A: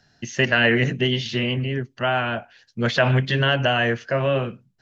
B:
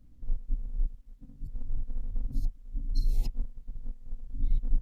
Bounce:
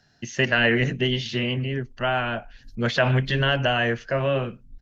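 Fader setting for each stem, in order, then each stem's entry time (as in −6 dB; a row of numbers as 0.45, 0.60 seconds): −2.0, −17.0 decibels; 0.00, 0.30 seconds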